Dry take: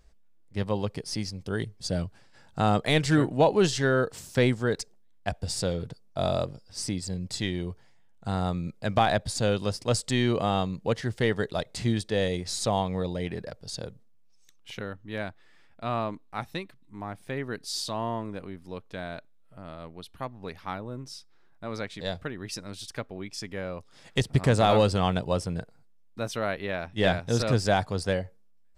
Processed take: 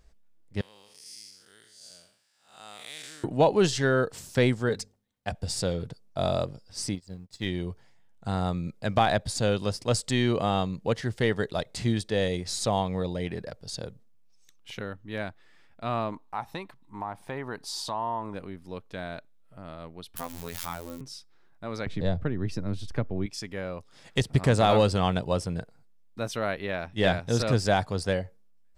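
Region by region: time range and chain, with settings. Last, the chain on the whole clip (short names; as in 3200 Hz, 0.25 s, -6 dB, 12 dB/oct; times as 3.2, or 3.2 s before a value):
0.61–3.24 time blur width 0.214 s + differentiator
4.69–5.35 notches 50/100/150/200/250 Hz + notch comb 330 Hz
6.95–7.46 G.711 law mismatch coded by A + high shelf 8500 Hz -5 dB + upward expander 2.5:1, over -41 dBFS
16.12–18.34 bell 910 Hz +14 dB 0.87 oct + compressor 2:1, threshold -33 dBFS
20.16–21.01 switching spikes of -32 dBFS + robotiser 85.1 Hz + backwards sustainer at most 28 dB/s
21.86–23.26 tilt -3.5 dB/oct + three-band squash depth 40%
whole clip: dry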